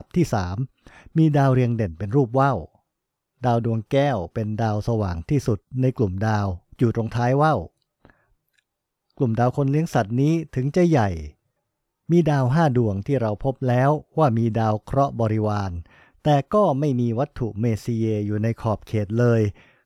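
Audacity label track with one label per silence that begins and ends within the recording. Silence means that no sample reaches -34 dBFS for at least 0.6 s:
2.650000	3.430000	silence
8.100000	9.200000	silence
11.280000	12.090000	silence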